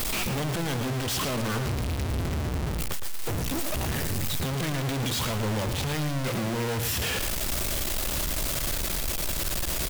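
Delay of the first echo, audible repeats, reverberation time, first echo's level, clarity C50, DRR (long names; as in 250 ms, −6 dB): 112 ms, 1, no reverb audible, −8.5 dB, no reverb audible, no reverb audible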